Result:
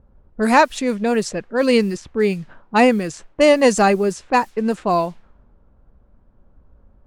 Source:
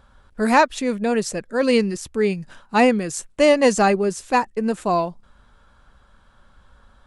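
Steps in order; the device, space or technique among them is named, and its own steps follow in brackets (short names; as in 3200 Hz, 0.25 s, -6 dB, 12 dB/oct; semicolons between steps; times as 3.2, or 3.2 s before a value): cassette deck with a dynamic noise filter (white noise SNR 33 dB; low-pass opened by the level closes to 420 Hz, open at -16.5 dBFS); gain +2 dB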